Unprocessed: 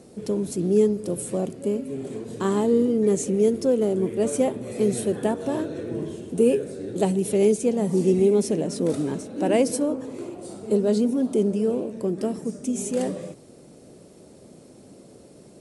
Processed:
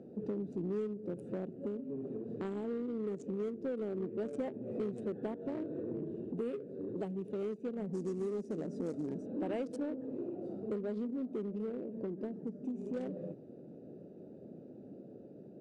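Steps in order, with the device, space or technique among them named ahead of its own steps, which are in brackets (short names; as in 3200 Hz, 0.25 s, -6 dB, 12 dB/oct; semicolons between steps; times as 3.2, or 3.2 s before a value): Wiener smoothing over 41 samples; AM radio (BPF 150–4300 Hz; compressor 4:1, threshold -35 dBFS, peak gain reduction 16.5 dB; soft clip -26 dBFS, distortion -23 dB; tremolo 0.21 Hz, depth 19%); 7.93–9.26 resonant high shelf 4600 Hz +11.5 dB, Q 1.5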